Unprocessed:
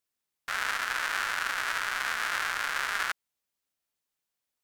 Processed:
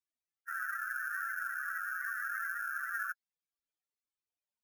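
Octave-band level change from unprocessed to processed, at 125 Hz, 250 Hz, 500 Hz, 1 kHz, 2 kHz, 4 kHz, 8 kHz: n/a, under -40 dB, under -40 dB, -7.5 dB, -5.5 dB, under -30 dB, -14.5 dB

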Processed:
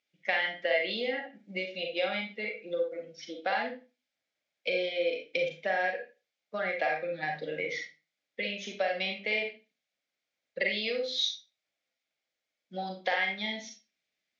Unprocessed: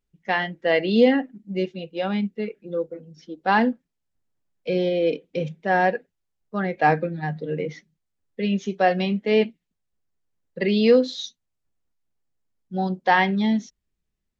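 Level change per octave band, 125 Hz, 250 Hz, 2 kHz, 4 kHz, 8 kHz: -20.0 dB, -19.5 dB, -4.0 dB, -0.5 dB, n/a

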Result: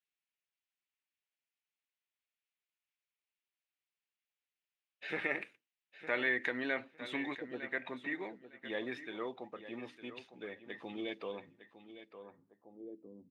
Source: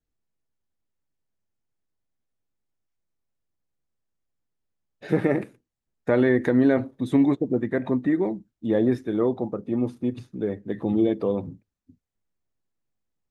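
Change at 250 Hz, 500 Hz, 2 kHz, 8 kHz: -21.5 dB, -17.5 dB, -1.0 dB, n/a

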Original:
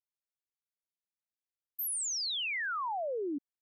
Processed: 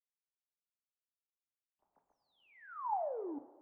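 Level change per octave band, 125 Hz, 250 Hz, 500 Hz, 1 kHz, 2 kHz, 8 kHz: n/a, -6.5 dB, -4.5 dB, -2.5 dB, -22.5 dB, under -40 dB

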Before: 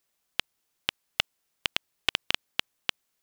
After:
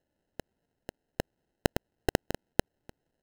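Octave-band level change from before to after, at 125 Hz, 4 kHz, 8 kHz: +12.5, -15.0, -1.5 dB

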